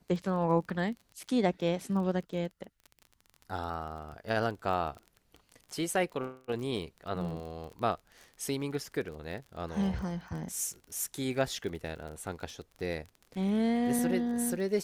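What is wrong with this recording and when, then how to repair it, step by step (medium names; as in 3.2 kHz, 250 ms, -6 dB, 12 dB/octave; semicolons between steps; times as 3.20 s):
crackle 27 per s -39 dBFS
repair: de-click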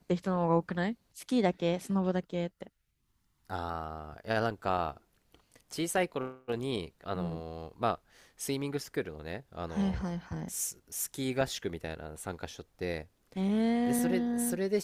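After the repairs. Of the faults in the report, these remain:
nothing left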